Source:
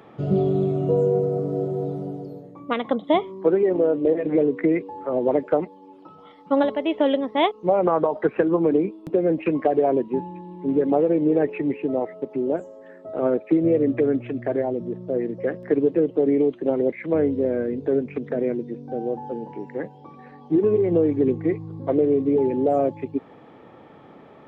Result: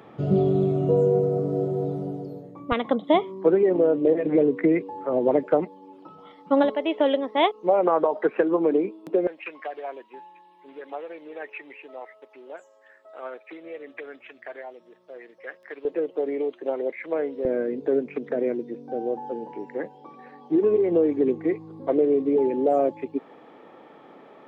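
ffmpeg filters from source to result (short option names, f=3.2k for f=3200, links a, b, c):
-af "asetnsamples=n=441:p=0,asendcmd='2.72 highpass f 110;6.7 highpass f 310;9.27 highpass f 1300;15.85 highpass f 560;17.45 highpass f 270',highpass=47"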